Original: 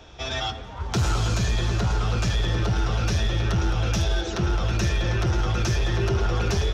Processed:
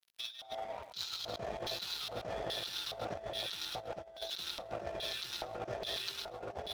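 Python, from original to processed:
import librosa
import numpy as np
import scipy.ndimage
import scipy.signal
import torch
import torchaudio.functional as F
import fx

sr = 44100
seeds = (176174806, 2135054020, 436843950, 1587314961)

y = fx.quant_dither(x, sr, seeds[0], bits=10, dither='none')
y = fx.filter_lfo_bandpass(y, sr, shape='square', hz=1.2, low_hz=650.0, high_hz=4000.0, q=6.0)
y = np.sign(y) * np.maximum(np.abs(y) - 10.0 ** (-54.5 / 20.0), 0.0)
y = y + 10.0 ** (-9.0 / 20.0) * np.pad(y, (int(131 * sr / 1000.0), 0))[:len(y)]
y = fx.over_compress(y, sr, threshold_db=-47.0, ratio=-0.5)
y = y * 10.0 ** (6.5 / 20.0)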